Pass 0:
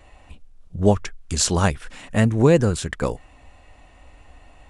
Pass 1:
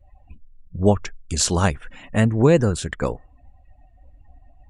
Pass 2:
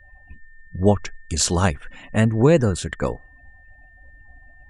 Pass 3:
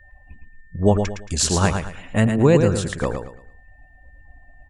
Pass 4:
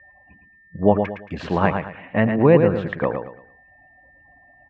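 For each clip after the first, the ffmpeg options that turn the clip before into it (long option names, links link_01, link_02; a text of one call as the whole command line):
ffmpeg -i in.wav -af "afftdn=noise_reduction=27:noise_floor=-44" out.wav
ffmpeg -i in.wav -af "aeval=exprs='val(0)+0.00316*sin(2*PI*1800*n/s)':channel_layout=same" out.wav
ffmpeg -i in.wav -af "aecho=1:1:112|224|336|448:0.473|0.142|0.0426|0.0128" out.wav
ffmpeg -i in.wav -af "highpass=180,equalizer=frequency=240:width_type=q:width=4:gain=-4,equalizer=frequency=390:width_type=q:width=4:gain=-5,equalizer=frequency=1400:width_type=q:width=4:gain=-6,lowpass=frequency=2300:width=0.5412,lowpass=frequency=2300:width=1.3066,volume=4dB" out.wav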